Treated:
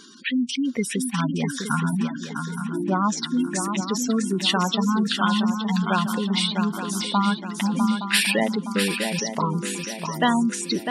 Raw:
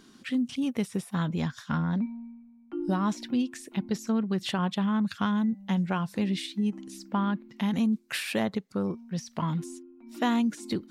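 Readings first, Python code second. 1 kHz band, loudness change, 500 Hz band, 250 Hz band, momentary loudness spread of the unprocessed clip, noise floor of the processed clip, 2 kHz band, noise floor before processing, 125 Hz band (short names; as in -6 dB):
+9.0 dB, +6.0 dB, +6.5 dB, +4.5 dB, 8 LU, -35 dBFS, +10.5 dB, -56 dBFS, +4.0 dB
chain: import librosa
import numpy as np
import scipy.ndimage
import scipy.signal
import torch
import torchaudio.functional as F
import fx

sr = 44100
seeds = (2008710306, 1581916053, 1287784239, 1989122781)

y = fx.tilt_eq(x, sr, slope=2.5)
y = fx.spec_gate(y, sr, threshold_db=-15, keep='strong')
y = fx.echo_swing(y, sr, ms=868, ratio=3, feedback_pct=40, wet_db=-6.5)
y = F.gain(torch.from_numpy(y), 9.0).numpy()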